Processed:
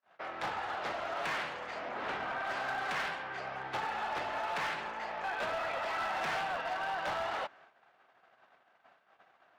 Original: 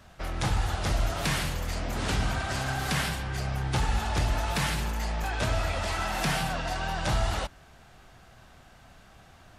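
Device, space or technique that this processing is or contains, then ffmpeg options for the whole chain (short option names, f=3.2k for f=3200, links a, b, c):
walkie-talkie: -filter_complex "[0:a]highpass=540,lowpass=2.2k,asoftclip=type=hard:threshold=-30.5dB,agate=range=-33dB:threshold=-57dB:ratio=16:detection=peak,asettb=1/sr,asplit=3[a][b][c];[a]atrim=end=1.894[d];[b]atrim=start=1.89:end=2.45,asetpts=PTS-STARTPTS,afade=t=in:d=0.004:c=qsin,afade=t=out:st=0.556:d=0.004:c=qsin,highshelf=f=5.2k:g=-11.5[e];[c]atrim=start=2.446[f];[d][e]acrossfade=d=0.004:c1=hsin:c2=qsin[g];[g][f]acrossfade=d=0.004:c1=qsin:c2=hsin"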